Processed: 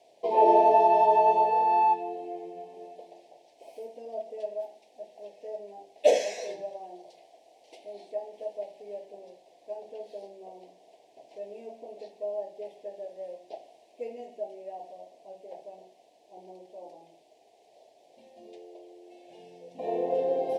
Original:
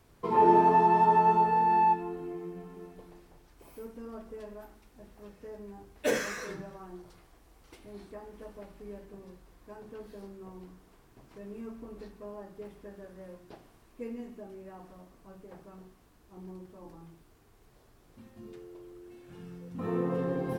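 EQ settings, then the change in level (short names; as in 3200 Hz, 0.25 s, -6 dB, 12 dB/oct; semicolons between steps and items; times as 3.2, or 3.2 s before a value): resonant high-pass 670 Hz, resonance Q 4.9; Butterworth band-stop 1300 Hz, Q 0.65; air absorption 73 m; +6.0 dB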